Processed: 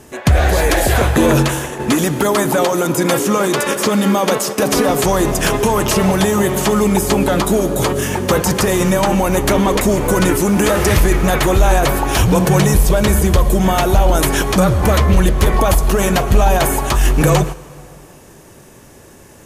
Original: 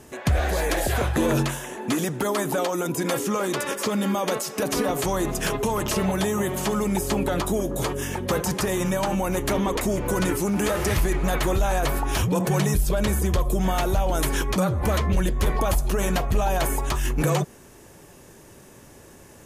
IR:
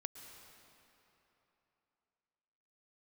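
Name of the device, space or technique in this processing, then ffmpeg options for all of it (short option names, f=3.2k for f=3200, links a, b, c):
keyed gated reverb: -filter_complex "[0:a]asplit=3[a][b][c];[1:a]atrim=start_sample=2205[d];[b][d]afir=irnorm=-1:irlink=0[e];[c]apad=whole_len=858083[f];[e][f]sidechaingate=range=-10dB:threshold=-34dB:ratio=16:detection=peak,volume=5dB[g];[a][g]amix=inputs=2:normalize=0,volume=3dB"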